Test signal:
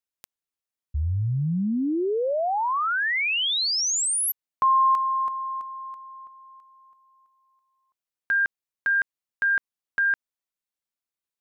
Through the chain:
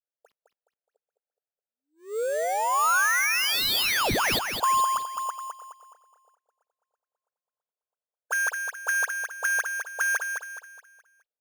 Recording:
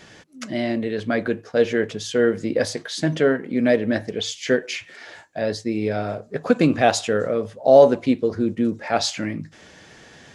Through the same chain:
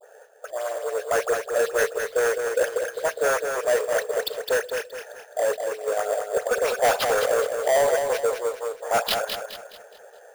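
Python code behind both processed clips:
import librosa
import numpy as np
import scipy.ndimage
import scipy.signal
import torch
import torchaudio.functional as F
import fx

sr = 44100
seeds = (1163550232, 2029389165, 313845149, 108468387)

p1 = fx.wiener(x, sr, points=41)
p2 = scipy.signal.sosfilt(scipy.signal.butter(16, 440.0, 'highpass', fs=sr, output='sos'), p1)
p3 = fx.high_shelf_res(p2, sr, hz=1800.0, db=-6.5, q=1.5)
p4 = fx.hpss(p3, sr, part='harmonic', gain_db=-11)
p5 = fx.over_compress(p4, sr, threshold_db=-32.0, ratio=-1.0)
p6 = p4 + (p5 * 10.0 ** (0.5 / 20.0))
p7 = fx.dispersion(p6, sr, late='highs', ms=77.0, hz=2200.0)
p8 = fx.sample_hold(p7, sr, seeds[0], rate_hz=8000.0, jitter_pct=0)
p9 = 10.0 ** (-21.0 / 20.0) * np.tanh(p8 / 10.0 ** (-21.0 / 20.0))
p10 = fx.echo_feedback(p9, sr, ms=210, feedback_pct=39, wet_db=-6)
y = p10 * 10.0 ** (5.0 / 20.0)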